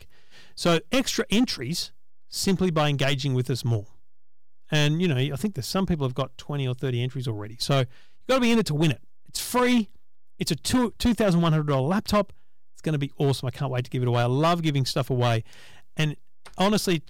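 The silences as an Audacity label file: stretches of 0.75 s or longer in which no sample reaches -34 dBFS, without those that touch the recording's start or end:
3.820000	4.720000	silence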